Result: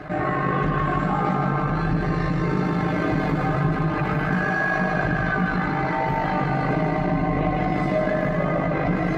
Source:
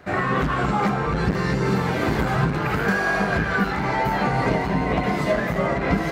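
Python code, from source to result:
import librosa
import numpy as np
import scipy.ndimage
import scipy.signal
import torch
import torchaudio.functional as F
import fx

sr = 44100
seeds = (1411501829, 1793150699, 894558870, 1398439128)

y = fx.lowpass(x, sr, hz=1700.0, slope=6)
y = fx.notch_comb(y, sr, f0_hz=470.0)
y = fx.echo_feedback(y, sr, ms=104, feedback_pct=59, wet_db=-4.5)
y = fx.stretch_grains(y, sr, factor=1.5, grain_ms=39.0)
y = fx.env_flatten(y, sr, amount_pct=50)
y = F.gain(torch.from_numpy(y), -3.0).numpy()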